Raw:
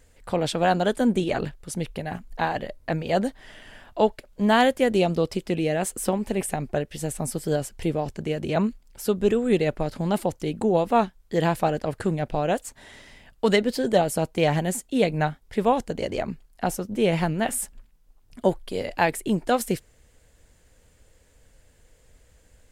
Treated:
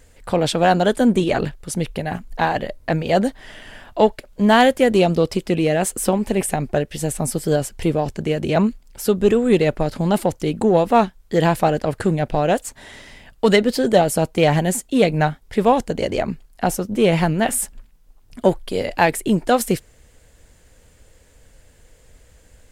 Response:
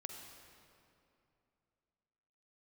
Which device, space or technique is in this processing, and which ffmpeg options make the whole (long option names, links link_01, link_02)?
parallel distortion: -filter_complex "[0:a]asplit=2[link_01][link_02];[link_02]asoftclip=type=hard:threshold=-21dB,volume=-12dB[link_03];[link_01][link_03]amix=inputs=2:normalize=0,volume=4.5dB"